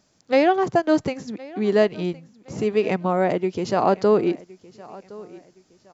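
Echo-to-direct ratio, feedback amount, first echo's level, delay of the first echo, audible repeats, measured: −20.5 dB, 33%, −21.0 dB, 1,065 ms, 2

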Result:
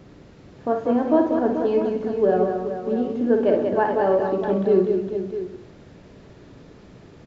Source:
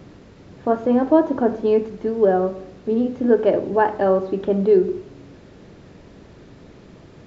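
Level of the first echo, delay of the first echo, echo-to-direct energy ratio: −6.5 dB, 55 ms, −1.0 dB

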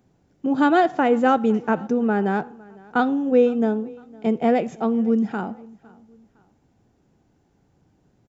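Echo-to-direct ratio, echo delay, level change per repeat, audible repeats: −23.5 dB, 508 ms, −8.5 dB, 2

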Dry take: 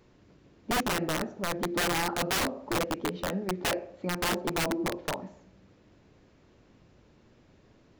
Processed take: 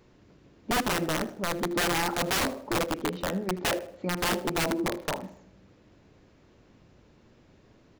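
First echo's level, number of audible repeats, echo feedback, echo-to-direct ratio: −19.0 dB, 2, 32%, −18.5 dB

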